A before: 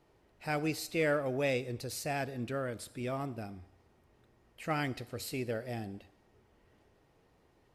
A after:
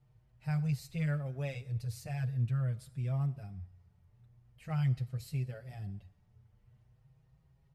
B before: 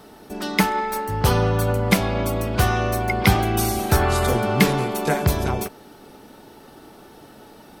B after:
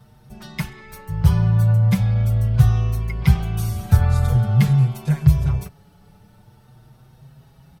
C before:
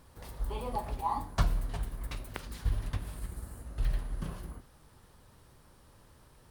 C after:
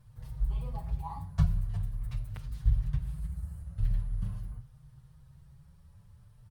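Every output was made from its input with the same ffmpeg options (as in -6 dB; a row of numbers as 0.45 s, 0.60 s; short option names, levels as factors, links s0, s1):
-filter_complex "[0:a]lowshelf=f=200:t=q:w=3:g=13,asplit=2[s0][s1];[s1]adelay=6.2,afreqshift=0.45[s2];[s0][s2]amix=inputs=2:normalize=1,volume=0.422"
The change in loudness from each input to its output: 0.0 LU, +2.5 LU, +2.5 LU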